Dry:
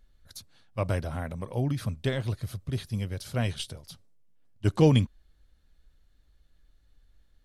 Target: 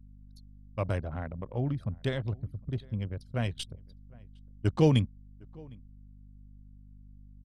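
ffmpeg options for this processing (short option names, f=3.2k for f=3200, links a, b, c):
-filter_complex "[0:a]anlmdn=2.51,aeval=exprs='val(0)+0.00398*(sin(2*PI*50*n/s)+sin(2*PI*2*50*n/s)/2+sin(2*PI*3*50*n/s)/3+sin(2*PI*4*50*n/s)/4+sin(2*PI*5*50*n/s)/5)':c=same,asplit=2[a][b];[b]adelay=758,volume=-25dB,highshelf=f=4k:g=-17.1[c];[a][c]amix=inputs=2:normalize=0,volume=-2.5dB"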